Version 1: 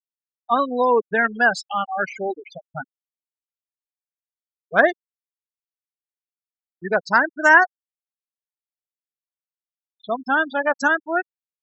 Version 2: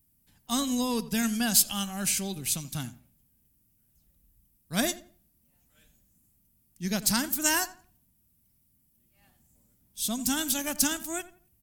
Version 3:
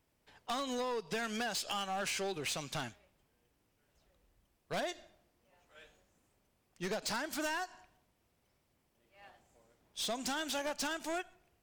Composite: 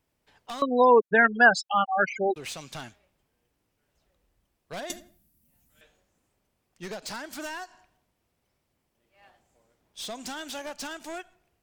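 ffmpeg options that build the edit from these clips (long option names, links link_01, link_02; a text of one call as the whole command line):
ffmpeg -i take0.wav -i take1.wav -i take2.wav -filter_complex "[2:a]asplit=3[link_01][link_02][link_03];[link_01]atrim=end=0.622[link_04];[0:a]atrim=start=0.618:end=2.362[link_05];[link_02]atrim=start=2.358:end=4.902[link_06];[1:a]atrim=start=4.898:end=5.812[link_07];[link_03]atrim=start=5.808[link_08];[link_04][link_05]acrossfade=duration=0.004:curve1=hsin:curve2=hsin[link_09];[link_09][link_06]acrossfade=duration=0.004:curve1=hsin:curve2=hsin[link_10];[link_10][link_07]acrossfade=duration=0.004:curve1=hsin:curve2=hsin[link_11];[link_11][link_08]acrossfade=duration=0.004:curve1=hsin:curve2=hsin" out.wav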